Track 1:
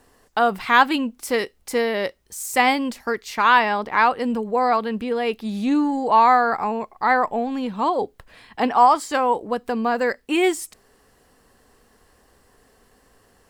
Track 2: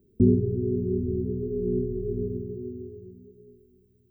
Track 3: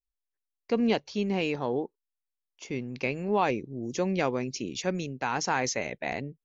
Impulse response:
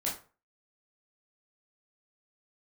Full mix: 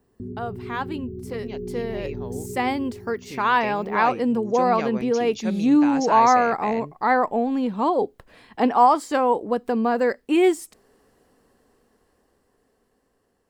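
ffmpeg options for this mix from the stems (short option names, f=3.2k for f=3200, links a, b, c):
-filter_complex "[0:a]equalizer=f=320:w=0.49:g=8,volume=-17.5dB[a];[1:a]alimiter=limit=-21.5dB:level=0:latency=1:release=116,volume=-5.5dB[b];[2:a]adelay=600,volume=-14.5dB[c];[a][b][c]amix=inputs=3:normalize=0,dynaudnorm=f=660:g=9:m=13dB"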